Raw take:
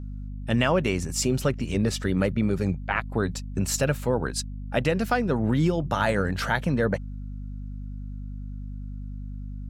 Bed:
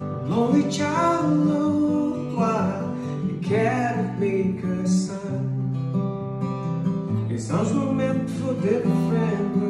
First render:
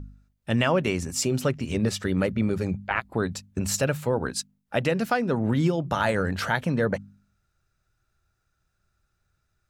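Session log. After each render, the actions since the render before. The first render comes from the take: de-hum 50 Hz, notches 5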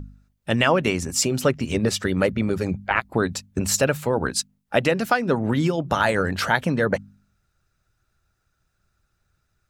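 harmonic-percussive split percussive +6 dB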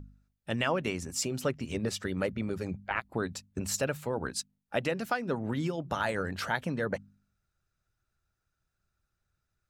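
trim -10.5 dB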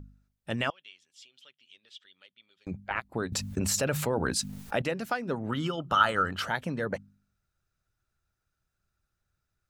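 0.70–2.67 s: band-pass filter 3.3 kHz, Q 9.5; 3.32–4.82 s: level flattener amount 70%; 5.50–6.42 s: small resonant body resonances 1.3/3 kHz, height 17 dB, ringing for 20 ms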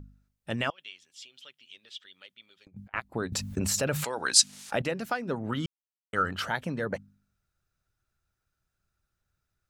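0.78–2.94 s: compressor with a negative ratio -45 dBFS, ratio -0.5; 4.04–4.72 s: frequency weighting ITU-R 468; 5.66–6.13 s: mute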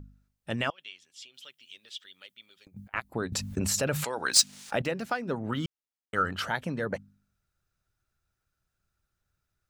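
1.34–3.14 s: treble shelf 7.7 kHz +11 dB; 4.30–6.18 s: median filter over 3 samples

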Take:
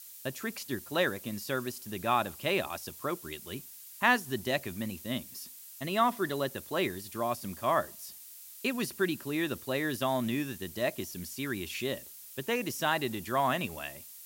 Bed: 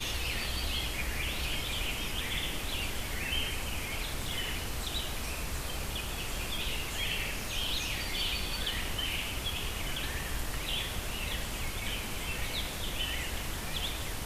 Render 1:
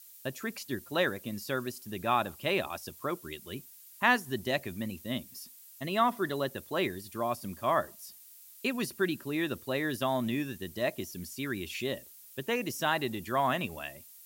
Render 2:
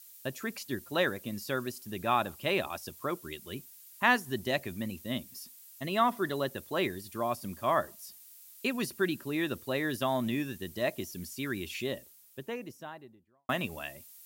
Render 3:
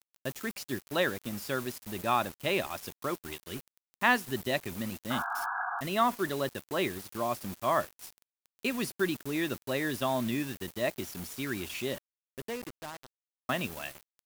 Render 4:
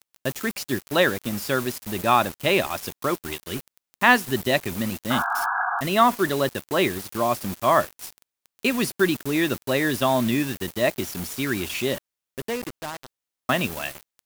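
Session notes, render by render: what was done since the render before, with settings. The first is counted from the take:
noise reduction 6 dB, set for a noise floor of -49 dBFS
11.60–13.49 s: studio fade out
bit crusher 7-bit; 5.10–5.81 s: painted sound noise 690–1700 Hz -34 dBFS
trim +9 dB; peak limiter -3 dBFS, peak gain reduction 2 dB

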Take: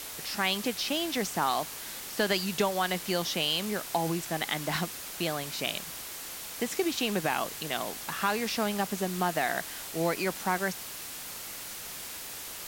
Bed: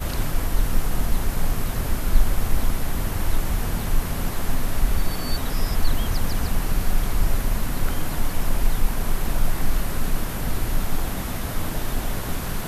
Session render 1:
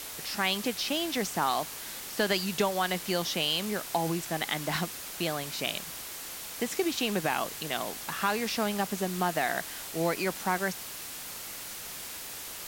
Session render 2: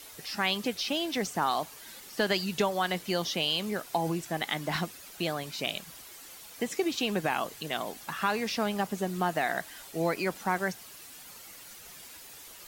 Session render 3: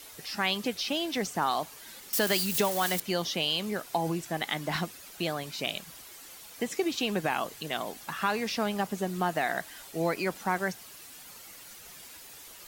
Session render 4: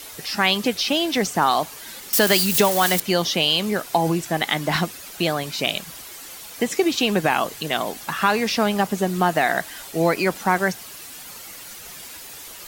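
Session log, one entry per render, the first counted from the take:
no audible change
noise reduction 10 dB, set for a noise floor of -41 dBFS
2.13–3.00 s: zero-crossing glitches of -23.5 dBFS
trim +9.5 dB

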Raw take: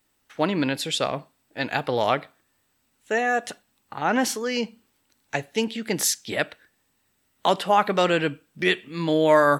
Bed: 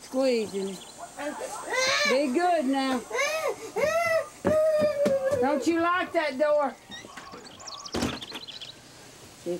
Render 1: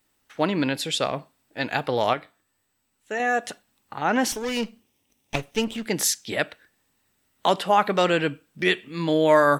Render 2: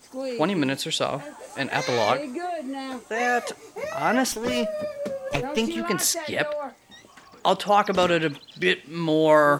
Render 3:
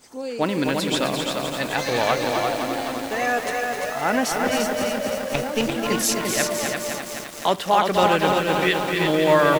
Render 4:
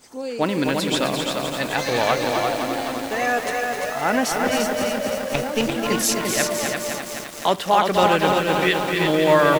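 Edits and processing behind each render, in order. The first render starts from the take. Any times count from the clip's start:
2.13–3.20 s: feedback comb 100 Hz, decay 0.22 s; 4.32–5.86 s: comb filter that takes the minimum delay 0.33 ms
add bed -6.5 dB
delay 345 ms -4.5 dB; bit-crushed delay 257 ms, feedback 80%, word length 6-bit, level -5 dB
trim +1 dB

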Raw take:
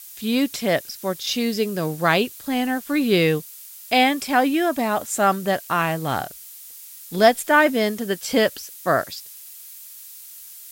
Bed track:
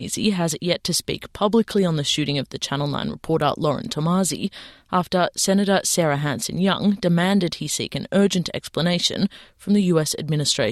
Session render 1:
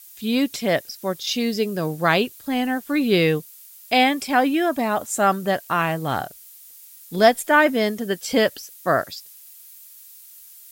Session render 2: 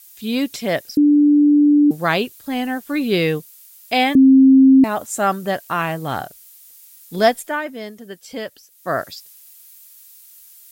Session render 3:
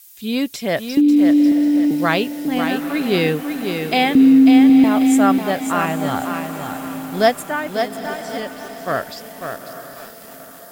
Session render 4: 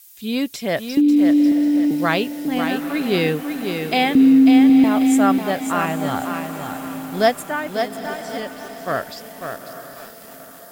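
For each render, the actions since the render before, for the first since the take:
noise reduction 6 dB, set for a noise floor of -41 dBFS
0.97–1.91 s: bleep 293 Hz -9 dBFS; 4.15–4.84 s: bleep 266 Hz -6 dBFS; 7.27–9.04 s: dip -10.5 dB, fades 0.34 s
echo that smears into a reverb 871 ms, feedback 53%, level -12 dB; bit-crushed delay 544 ms, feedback 35%, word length 6-bit, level -6 dB
trim -1.5 dB

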